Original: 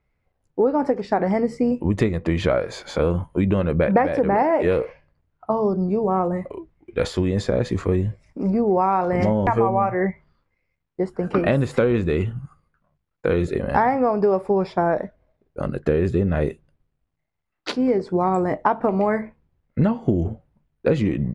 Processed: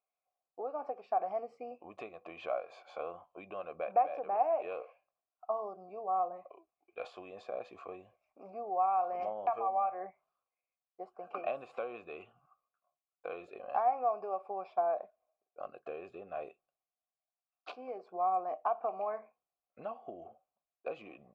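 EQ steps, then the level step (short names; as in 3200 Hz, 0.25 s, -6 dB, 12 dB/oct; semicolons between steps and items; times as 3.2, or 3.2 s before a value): vowel filter a; bell 120 Hz -11.5 dB 2.9 oct; -3.0 dB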